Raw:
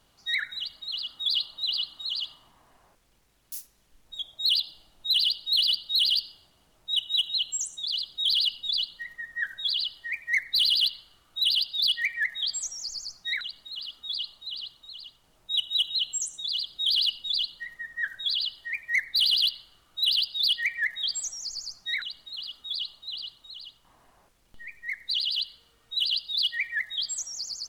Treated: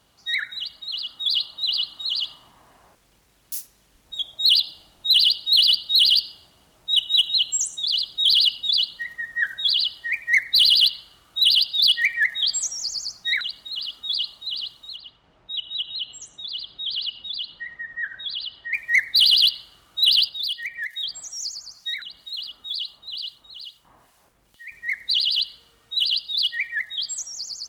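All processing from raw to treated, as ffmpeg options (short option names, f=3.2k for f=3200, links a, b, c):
-filter_complex "[0:a]asettb=1/sr,asplit=3[a][b][c];[a]atrim=end=14.964[d];[b]atrim=start=14.96:end=18.73,asetpts=PTS-STARTPTS,afade=t=in:d=0.004:c=qsin,afade=t=out:st=3.766:d=0.004:c=qsin,lowpass=2.8k,acompressor=threshold=-40dB:ratio=1.5:attack=3.2:release=140:knee=1:detection=peak[e];[c]atrim=start=18.726[f];[d][e]acrossfade=d=0.004:c1=hsin:c2=qsin[g];[g][f]acrossfade=d=0.004:c1=qsin:c2=hsin,asettb=1/sr,asplit=3[h][i][j];[h]atrim=end=20.294[k];[i]atrim=start=20.29:end=24.72,asetpts=PTS-STARTPTS,afade=t=in:d=0.004:c=qsin,afade=t=out:st=4.426:d=0.004:c=qsin,highshelf=f=10k:g=5.5,acrossover=split=840|2000[l][m][n];[l]acompressor=threshold=-59dB:ratio=4[o];[m]acompressor=threshold=-45dB:ratio=4[p];[n]acompressor=threshold=-33dB:ratio=4[q];[o][p][q]amix=inputs=3:normalize=0,acrossover=split=2100[r][s];[r]aeval=exprs='val(0)*(1-0.7/2+0.7/2*cos(2*PI*2.2*n/s))':c=same[t];[s]aeval=exprs='val(0)*(1-0.7/2-0.7/2*cos(2*PI*2.2*n/s))':c=same[u];[t][u]amix=inputs=2:normalize=0[v];[j]atrim=start=24.716[w];[k][v]acrossfade=d=0.004:c1=hsin:c2=qsin[x];[x][w]acrossfade=d=0.004:c1=qsin:c2=hsin,highpass=45,dynaudnorm=f=120:g=31:m=4dB,volume=3dB"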